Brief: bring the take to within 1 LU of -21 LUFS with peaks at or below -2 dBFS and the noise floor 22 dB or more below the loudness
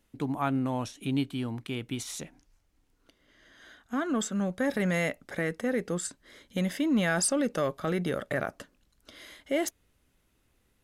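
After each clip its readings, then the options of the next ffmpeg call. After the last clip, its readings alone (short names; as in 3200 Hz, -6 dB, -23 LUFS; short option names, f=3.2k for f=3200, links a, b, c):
loudness -30.5 LUFS; peak -15.0 dBFS; loudness target -21.0 LUFS
-> -af "volume=9.5dB"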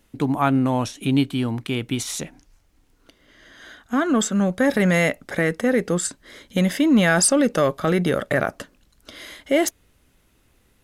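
loudness -21.0 LUFS; peak -5.5 dBFS; noise floor -61 dBFS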